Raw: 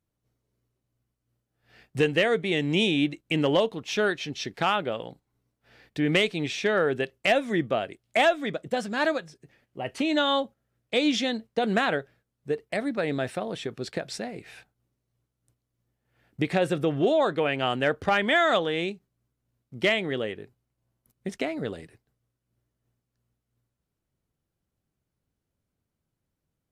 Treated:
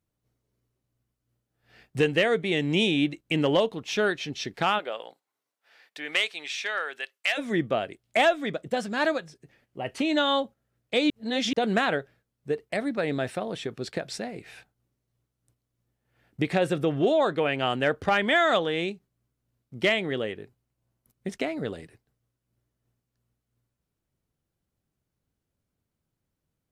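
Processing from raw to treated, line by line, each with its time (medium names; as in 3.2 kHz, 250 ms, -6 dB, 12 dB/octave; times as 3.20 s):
4.78–7.37 s: high-pass 530 Hz -> 1.4 kHz
11.10–11.53 s: reverse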